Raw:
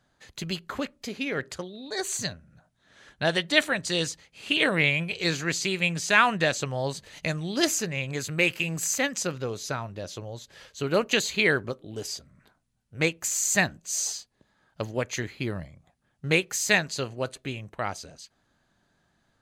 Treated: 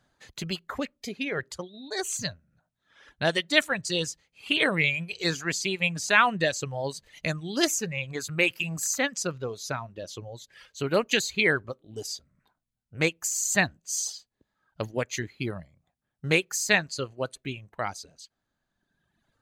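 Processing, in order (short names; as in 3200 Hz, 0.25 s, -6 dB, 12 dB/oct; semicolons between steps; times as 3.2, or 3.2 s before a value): reverb removal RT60 1.6 s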